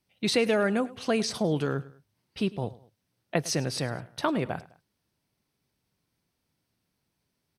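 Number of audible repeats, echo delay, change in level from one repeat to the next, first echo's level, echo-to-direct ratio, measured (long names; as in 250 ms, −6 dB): 2, 103 ms, −7.5 dB, −19.5 dB, −19.0 dB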